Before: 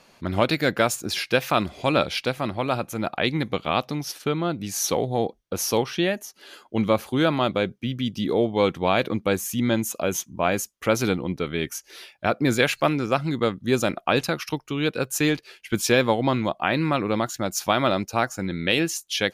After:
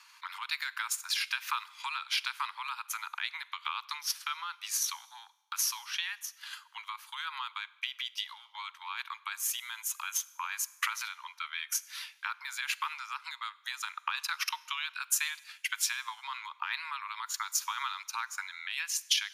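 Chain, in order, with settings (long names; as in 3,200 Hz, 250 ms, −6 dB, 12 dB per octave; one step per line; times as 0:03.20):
downward compressor 12 to 1, threshold −24 dBFS, peak gain reduction 11 dB
brickwall limiter −21.5 dBFS, peak gain reduction 10.5 dB
transient designer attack +9 dB, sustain −5 dB
Butterworth high-pass 920 Hz 96 dB per octave
four-comb reverb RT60 1 s, combs from 32 ms, DRR 19.5 dB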